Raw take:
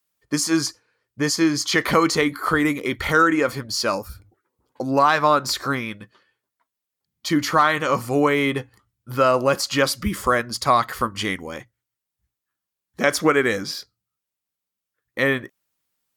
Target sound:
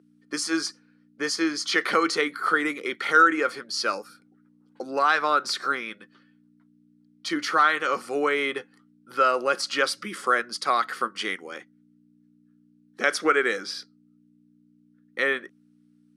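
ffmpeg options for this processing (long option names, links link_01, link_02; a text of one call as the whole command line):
ffmpeg -i in.wav -af "aeval=exprs='val(0)+0.0126*(sin(2*PI*60*n/s)+sin(2*PI*2*60*n/s)/2+sin(2*PI*3*60*n/s)/3+sin(2*PI*4*60*n/s)/4+sin(2*PI*5*60*n/s)/5)':channel_layout=same,highpass=frequency=260:width=0.5412,highpass=frequency=260:width=1.3066,equalizer=frequency=270:width_type=q:width=4:gain=-8,equalizer=frequency=620:width_type=q:width=4:gain=-6,equalizer=frequency=970:width_type=q:width=4:gain=-8,equalizer=frequency=1400:width_type=q:width=4:gain=6,equalizer=frequency=7000:width_type=q:width=4:gain=-7,lowpass=frequency=9800:width=0.5412,lowpass=frequency=9800:width=1.3066,volume=-3dB" out.wav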